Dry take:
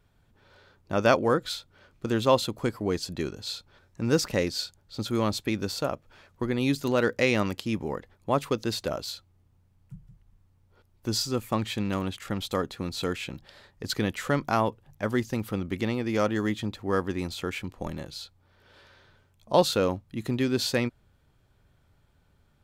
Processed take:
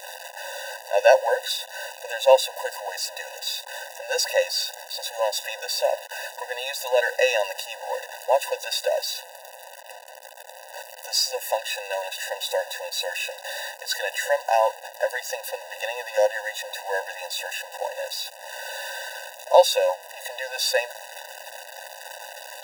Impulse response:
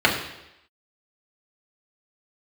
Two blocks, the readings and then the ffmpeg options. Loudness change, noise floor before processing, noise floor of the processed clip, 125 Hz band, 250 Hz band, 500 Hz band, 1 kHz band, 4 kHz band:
+3.0 dB, −65 dBFS, −44 dBFS, below −40 dB, below −40 dB, +5.5 dB, +5.0 dB, +6.5 dB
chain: -af "aeval=exprs='val(0)+0.5*0.0251*sgn(val(0))':channel_layout=same,afftfilt=real='re*eq(mod(floor(b*sr/1024/500),2),1)':imag='im*eq(mod(floor(b*sr/1024/500),2),1)':win_size=1024:overlap=0.75,volume=7dB"

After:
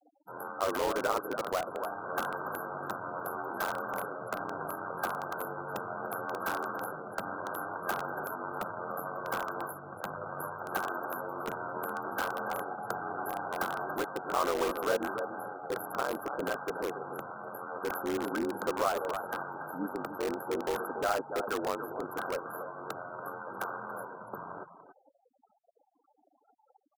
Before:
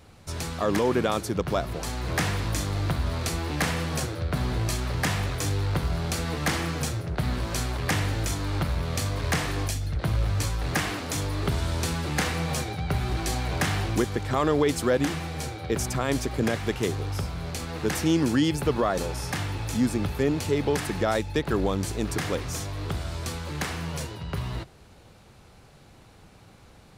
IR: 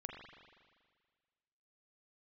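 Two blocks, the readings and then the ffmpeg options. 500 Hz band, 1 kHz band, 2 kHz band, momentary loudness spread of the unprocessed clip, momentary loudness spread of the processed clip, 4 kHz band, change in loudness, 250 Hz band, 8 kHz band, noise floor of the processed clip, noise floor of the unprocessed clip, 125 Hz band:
−5.5 dB, −1.0 dB, −5.0 dB, 8 LU, 10 LU, −14.0 dB, −8.0 dB, −12.5 dB, −14.0 dB, −72 dBFS, −52 dBFS, −24.5 dB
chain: -filter_complex "[0:a]aeval=exprs='val(0)*sin(2*PI*45*n/s)':channel_layout=same,aeval=exprs='val(0)+0.00631*(sin(2*PI*60*n/s)+sin(2*PI*2*60*n/s)/2+sin(2*PI*3*60*n/s)/3+sin(2*PI*4*60*n/s)/4+sin(2*PI*5*60*n/s)/5)':channel_layout=same,highshelf=frequency=11000:gain=-3.5,aecho=1:1:285:0.299,afftfilt=real='re*(1-between(b*sr/4096,1600,11000))':imag='im*(1-between(b*sr/4096,1600,11000))':win_size=4096:overlap=0.75,highpass=560,adynamicequalizer=threshold=0.002:dfrequency=1700:dqfactor=3.9:tfrequency=1700:tqfactor=3.9:attack=5:release=100:ratio=0.375:range=1.5:mode=boostabove:tftype=bell,afftfilt=real='re*gte(hypot(re,im),0.00398)':imag='im*gte(hypot(re,im),0.00398)':win_size=1024:overlap=0.75,asplit=2[link_01][link_02];[link_02]aeval=exprs='(mod(26.6*val(0)+1,2)-1)/26.6':channel_layout=same,volume=-5.5dB[link_03];[link_01][link_03]amix=inputs=2:normalize=0"

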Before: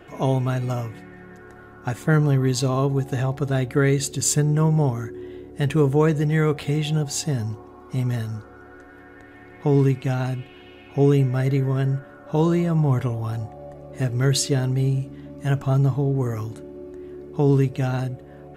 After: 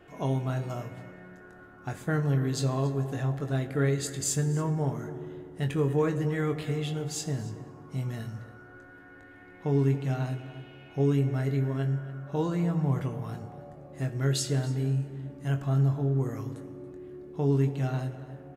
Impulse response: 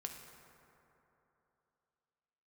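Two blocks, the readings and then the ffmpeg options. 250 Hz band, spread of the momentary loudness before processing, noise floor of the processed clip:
−7.0 dB, 16 LU, −51 dBFS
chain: -filter_complex "[0:a]asplit=2[link_01][link_02];[link_02]adelay=279.9,volume=-15dB,highshelf=frequency=4000:gain=-6.3[link_03];[link_01][link_03]amix=inputs=2:normalize=0,asplit=2[link_04][link_05];[1:a]atrim=start_sample=2205,asetrate=52920,aresample=44100,adelay=22[link_06];[link_05][link_06]afir=irnorm=-1:irlink=0,volume=-1.5dB[link_07];[link_04][link_07]amix=inputs=2:normalize=0,volume=-9dB"

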